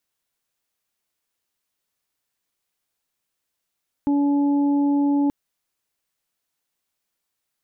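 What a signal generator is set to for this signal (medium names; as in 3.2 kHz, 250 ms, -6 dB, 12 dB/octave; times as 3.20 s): steady additive tone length 1.23 s, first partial 285 Hz, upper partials -19/-14.5 dB, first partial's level -16.5 dB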